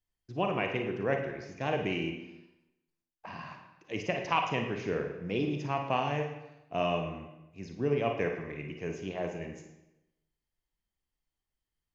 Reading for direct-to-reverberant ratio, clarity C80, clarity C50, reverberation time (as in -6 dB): 3.0 dB, 8.0 dB, 4.5 dB, 0.90 s